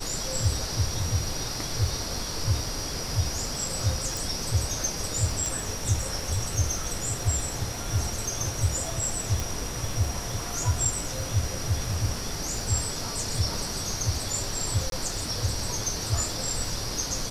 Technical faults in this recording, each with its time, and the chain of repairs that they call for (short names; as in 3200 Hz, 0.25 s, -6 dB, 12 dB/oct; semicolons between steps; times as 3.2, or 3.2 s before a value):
crackle 43/s -36 dBFS
4.17 pop
5.46 pop
9.4 pop
14.9–14.92 gap 22 ms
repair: de-click; interpolate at 14.9, 22 ms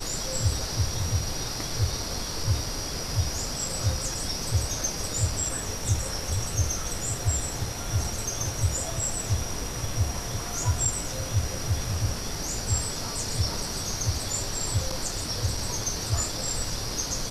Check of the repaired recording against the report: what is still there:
4.17 pop